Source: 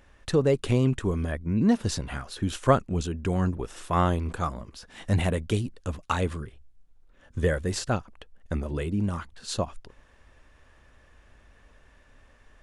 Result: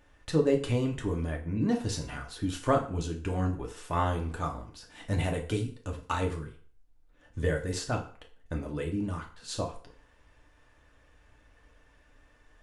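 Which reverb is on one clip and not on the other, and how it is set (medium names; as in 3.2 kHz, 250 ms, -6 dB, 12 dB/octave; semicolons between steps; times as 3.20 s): FDN reverb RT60 0.46 s, low-frequency decay 0.8×, high-frequency decay 0.85×, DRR 1 dB; trim -6 dB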